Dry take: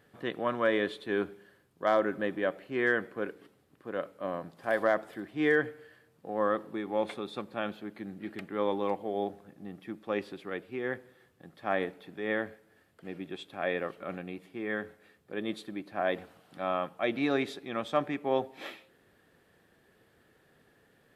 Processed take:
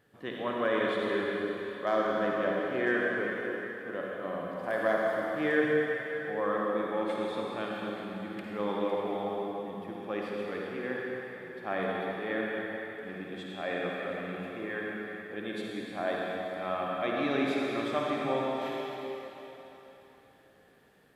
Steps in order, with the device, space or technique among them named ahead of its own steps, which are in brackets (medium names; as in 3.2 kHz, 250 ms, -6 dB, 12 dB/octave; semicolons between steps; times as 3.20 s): tunnel (flutter echo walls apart 9 m, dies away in 0.29 s; reverberation RT60 3.6 s, pre-delay 54 ms, DRR -3 dB); trim -4 dB